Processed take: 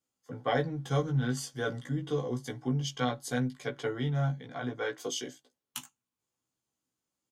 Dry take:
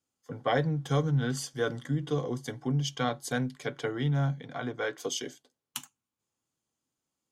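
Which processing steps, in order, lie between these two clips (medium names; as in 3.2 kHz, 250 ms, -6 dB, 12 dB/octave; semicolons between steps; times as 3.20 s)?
doubling 16 ms -3.5 dB; trim -3.5 dB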